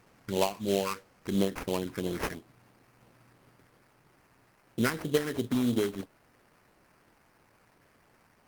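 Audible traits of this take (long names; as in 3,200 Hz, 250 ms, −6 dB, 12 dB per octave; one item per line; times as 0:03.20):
a quantiser's noise floor 10 bits, dither triangular
phaser sweep stages 8, 3 Hz, lowest notch 580–2,000 Hz
aliases and images of a low sample rate 3,600 Hz, jitter 20%
Opus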